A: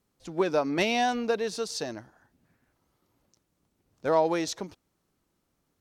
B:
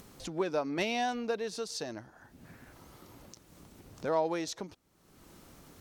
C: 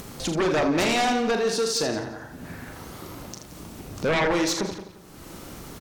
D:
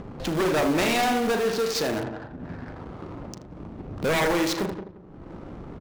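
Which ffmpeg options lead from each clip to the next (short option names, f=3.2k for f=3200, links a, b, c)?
-af "acompressor=mode=upward:threshold=-27dB:ratio=2.5,volume=-6dB"
-filter_complex "[0:a]asplit=2[a][b];[b]aecho=0:1:40|80:0.376|0.355[c];[a][c]amix=inputs=2:normalize=0,aeval=exprs='0.133*sin(PI/2*3.55*val(0)/0.133)':c=same,asplit=2[d][e];[e]adelay=175,lowpass=f=3.7k:p=1,volume=-11dB,asplit=2[f][g];[g]adelay=175,lowpass=f=3.7k:p=1,volume=0.29,asplit=2[h][i];[i]adelay=175,lowpass=f=3.7k:p=1,volume=0.29[j];[f][h][j]amix=inputs=3:normalize=0[k];[d][k]amix=inputs=2:normalize=0,volume=-1.5dB"
-filter_complex "[0:a]adynamicsmooth=sensitivity=5:basefreq=620,asplit=2[a][b];[b]aeval=exprs='(mod(16.8*val(0)+1,2)-1)/16.8':c=same,volume=-9dB[c];[a][c]amix=inputs=2:normalize=0"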